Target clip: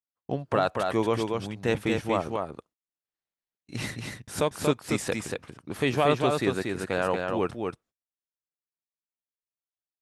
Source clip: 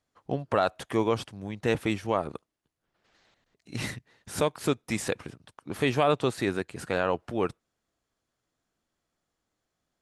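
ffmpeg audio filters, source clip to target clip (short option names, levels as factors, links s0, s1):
-af "agate=range=0.0224:threshold=0.00251:ratio=16:detection=peak,aecho=1:1:234:0.631"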